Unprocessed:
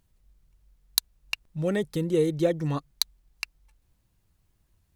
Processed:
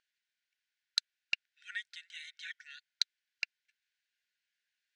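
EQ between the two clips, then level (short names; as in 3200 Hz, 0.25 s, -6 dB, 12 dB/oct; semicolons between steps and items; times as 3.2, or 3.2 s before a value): brick-wall FIR high-pass 1400 Hz; LPF 9500 Hz; air absorption 130 m; 0.0 dB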